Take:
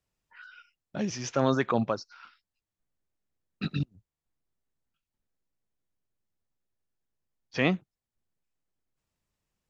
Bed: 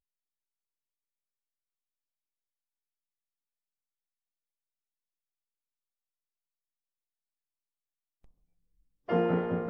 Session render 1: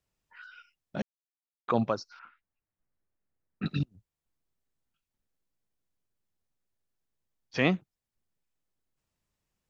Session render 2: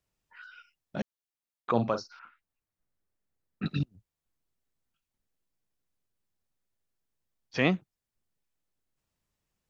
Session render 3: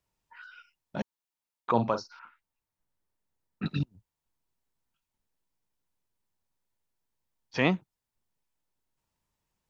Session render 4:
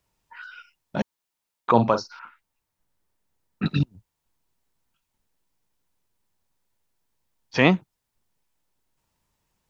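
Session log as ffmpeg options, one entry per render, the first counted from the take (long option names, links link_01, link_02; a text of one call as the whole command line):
ffmpeg -i in.wav -filter_complex "[0:a]asettb=1/sr,asplit=3[link_01][link_02][link_03];[link_01]atrim=end=2.194[link_04];[link_02]atrim=start=2.19:end=3.66,asetpts=PTS-STARTPTS,afade=type=in:duration=0.004:curve=qsin,afade=type=out:start_time=1.466:duration=0.004:curve=qsin,lowpass=frequency=2200:width=0.5412,lowpass=frequency=2200:width=1.3066[link_05];[link_03]atrim=start=3.656[link_06];[link_04][link_05]acrossfade=duration=0.004:curve1=hsin:curve2=qsin[link_07];[link_07][link_06]acrossfade=duration=0.004:curve1=qsin:curve2=hsin,asplit=3[link_08][link_09][link_10];[link_08]atrim=end=1.02,asetpts=PTS-STARTPTS,afade=type=out:start_time=1.016:duration=0.004:curve=hsin[link_11];[link_09]atrim=start=1.02:end=1.68,asetpts=PTS-STARTPTS,volume=0[link_12];[link_10]atrim=start=1.68,asetpts=PTS-STARTPTS,afade=type=in:duration=0.004:curve=hsin[link_13];[link_11][link_12][link_13]concat=n=3:v=0:a=1" out.wav
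ffmpeg -i in.wav -filter_complex "[0:a]asettb=1/sr,asplit=3[link_01][link_02][link_03];[link_01]atrim=end=1.714[link_04];[link_02]atrim=start=1.71:end=2.16,asetpts=PTS-STARTPTS,afade=type=in:duration=0.004:curve=qsin,afade=type=out:start_time=0.446:duration=0.004:curve=qsin,asplit=2[link_05][link_06];[link_06]adelay=42,volume=-9.5dB[link_07];[link_05][link_07]amix=inputs=2:normalize=0,atrim=end_sample=19845[link_08];[link_03]atrim=start=2.156[link_09];[link_04][link_08]acrossfade=duration=0.004:curve1=hsin:curve2=qsin[link_10];[link_10][link_09]acrossfade=duration=0.004:curve1=qsin:curve2=hsin" out.wav
ffmpeg -i in.wav -af "equalizer=frequency=930:width=5.9:gain=9" out.wav
ffmpeg -i in.wav -af "volume=7.5dB" out.wav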